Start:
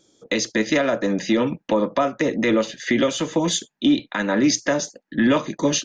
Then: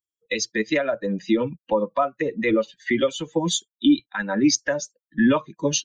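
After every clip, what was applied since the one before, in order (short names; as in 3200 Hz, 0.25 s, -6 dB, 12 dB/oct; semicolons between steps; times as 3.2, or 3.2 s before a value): per-bin expansion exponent 2; gain +2.5 dB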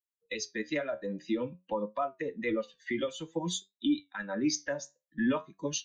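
flange 0.52 Hz, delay 9.3 ms, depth 5.3 ms, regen +69%; gain -6.5 dB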